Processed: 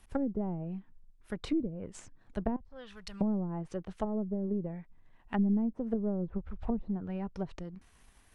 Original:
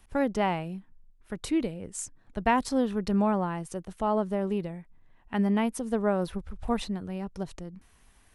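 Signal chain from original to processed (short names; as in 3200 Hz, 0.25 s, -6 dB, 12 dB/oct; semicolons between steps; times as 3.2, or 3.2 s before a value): half-wave gain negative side -3 dB; 2.56–3.21 passive tone stack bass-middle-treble 10-0-10; treble ducked by the level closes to 320 Hz, closed at -26.5 dBFS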